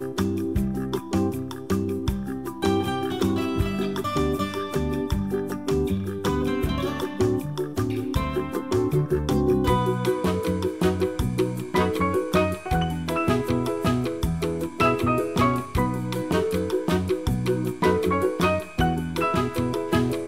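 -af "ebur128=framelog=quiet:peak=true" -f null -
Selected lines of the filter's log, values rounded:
Integrated loudness:
  I:         -24.9 LUFS
  Threshold: -34.9 LUFS
Loudness range:
  LRA:         2.3 LU
  Threshold: -44.8 LUFS
  LRA low:   -26.1 LUFS
  LRA high:  -23.9 LUFS
True peak:
  Peak:       -8.9 dBFS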